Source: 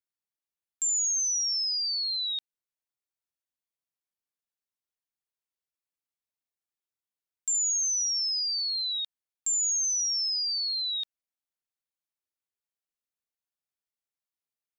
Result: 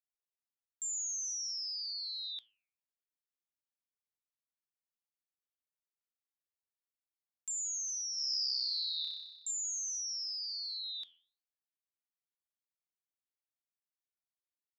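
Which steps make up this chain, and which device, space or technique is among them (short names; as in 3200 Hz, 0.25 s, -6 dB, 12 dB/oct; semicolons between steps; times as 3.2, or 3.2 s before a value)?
alien voice (ring modulator 140 Hz; flange 1.3 Hz, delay 6.6 ms, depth 5.8 ms, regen -87%); 8.14–9.51 flutter echo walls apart 5.3 m, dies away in 1.1 s; gain -3 dB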